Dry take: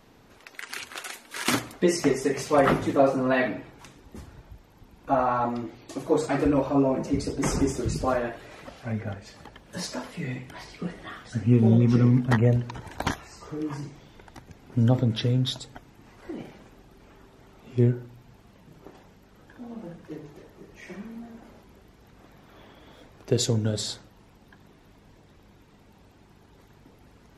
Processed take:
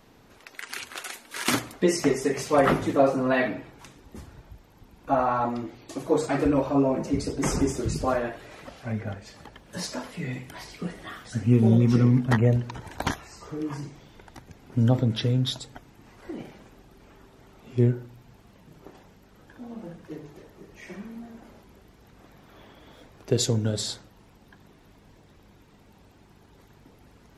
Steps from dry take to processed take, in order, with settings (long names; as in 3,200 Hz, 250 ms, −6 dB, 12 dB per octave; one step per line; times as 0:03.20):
high-shelf EQ 8,200 Hz +2 dB, from 0:10.33 +11 dB, from 0:12.03 +2.5 dB